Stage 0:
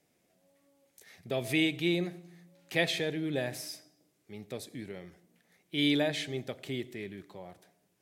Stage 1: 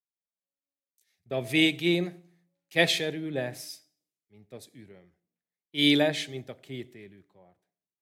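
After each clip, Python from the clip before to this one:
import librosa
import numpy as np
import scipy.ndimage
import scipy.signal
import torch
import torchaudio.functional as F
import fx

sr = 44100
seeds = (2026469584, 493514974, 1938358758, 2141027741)

y = fx.band_widen(x, sr, depth_pct=100)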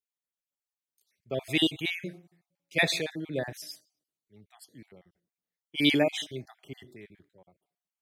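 y = fx.spec_dropout(x, sr, seeds[0], share_pct=39)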